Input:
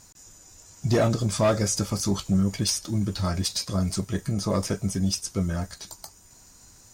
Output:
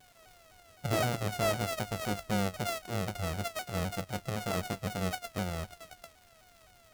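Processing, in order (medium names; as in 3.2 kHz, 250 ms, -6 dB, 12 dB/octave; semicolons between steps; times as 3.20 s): sorted samples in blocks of 64 samples; crackle 320 per s -40 dBFS; vibrato with a chosen wave saw down 3.9 Hz, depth 160 cents; trim -8.5 dB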